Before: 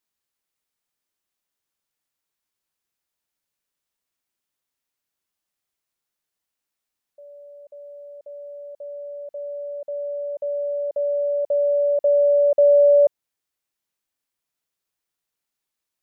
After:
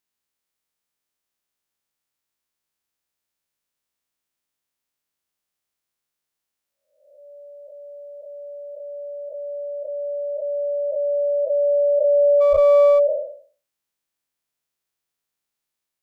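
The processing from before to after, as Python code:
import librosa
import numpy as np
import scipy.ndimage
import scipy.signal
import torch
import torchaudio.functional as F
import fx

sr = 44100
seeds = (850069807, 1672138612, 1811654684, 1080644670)

y = fx.spec_blur(x, sr, span_ms=368.0)
y = fx.running_max(y, sr, window=9, at=(12.4, 12.98), fade=0.02)
y = y * 10.0 ** (2.0 / 20.0)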